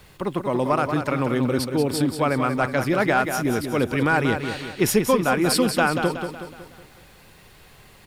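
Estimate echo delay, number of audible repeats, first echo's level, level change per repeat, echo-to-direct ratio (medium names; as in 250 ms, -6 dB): 185 ms, 5, -7.5 dB, -6.5 dB, -6.5 dB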